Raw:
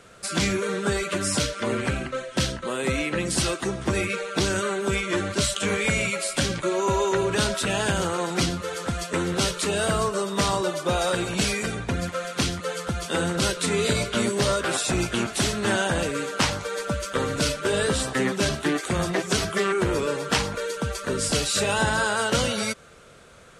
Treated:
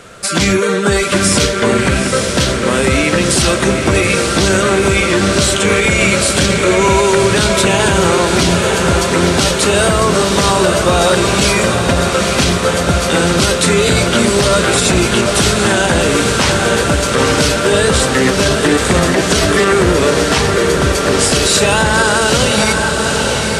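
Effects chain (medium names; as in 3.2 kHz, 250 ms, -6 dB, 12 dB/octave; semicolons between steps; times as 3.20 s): on a send: echo that smears into a reverb 889 ms, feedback 65%, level -6 dB; on the sum: loudness maximiser +14 dB; trim -1 dB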